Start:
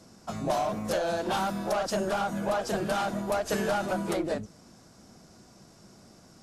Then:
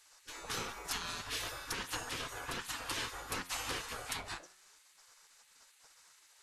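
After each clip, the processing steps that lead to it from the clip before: spectral gate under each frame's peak -20 dB weak; flange 0.63 Hz, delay 9.6 ms, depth 4.7 ms, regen +89%; trim +5.5 dB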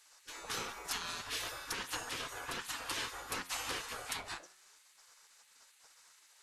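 bass shelf 200 Hz -6.5 dB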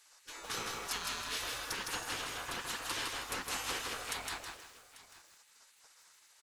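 delay 842 ms -18 dB; bit-crushed delay 160 ms, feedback 35%, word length 10-bit, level -3 dB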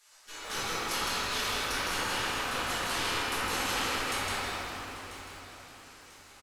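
feedback delay 992 ms, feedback 36%, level -15 dB; reverberation RT60 2.9 s, pre-delay 5 ms, DRR -10 dB; trim -2 dB

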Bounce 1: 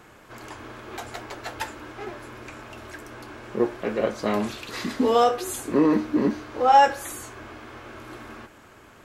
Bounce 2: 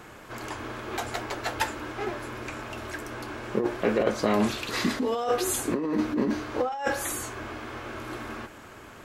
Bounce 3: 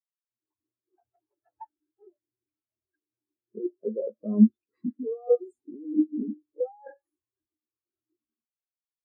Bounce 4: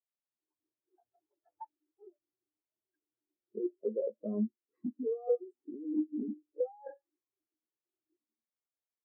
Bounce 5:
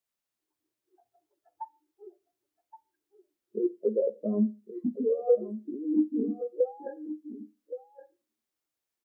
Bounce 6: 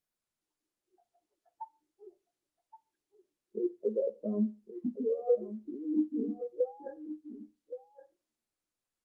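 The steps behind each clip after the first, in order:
compressor with a negative ratio -25 dBFS, ratio -1
spectral contrast expander 4:1; trim +1.5 dB
compression 2.5:1, threshold -30 dBFS, peak gain reduction 13 dB; band-pass filter 490 Hz, Q 0.76
delay 1121 ms -12.5 dB; Schroeder reverb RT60 0.31 s, combs from 33 ms, DRR 17.5 dB; trim +7 dB
trim -4.5 dB; Opus 32 kbps 48 kHz

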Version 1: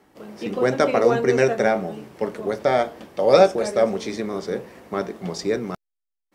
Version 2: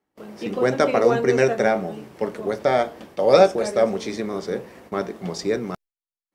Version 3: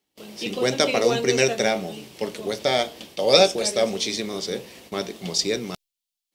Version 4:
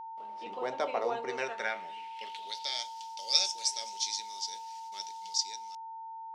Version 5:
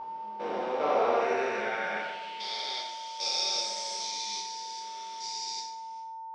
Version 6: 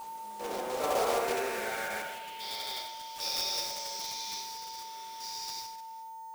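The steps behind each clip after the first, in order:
gate with hold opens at -35 dBFS
resonant high shelf 2.2 kHz +12 dB, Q 1.5; trim -2.5 dB
fade out at the end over 1.34 s; band-pass sweep 910 Hz -> 5.7 kHz, 1.20–2.88 s; whistle 900 Hz -38 dBFS; trim -2.5 dB
spectrogram pixelated in time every 400 ms; distance through air 72 m; plate-style reverb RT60 1 s, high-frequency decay 0.6×, DRR -5.5 dB; trim +3.5 dB
block-companded coder 3-bit; trim -3.5 dB

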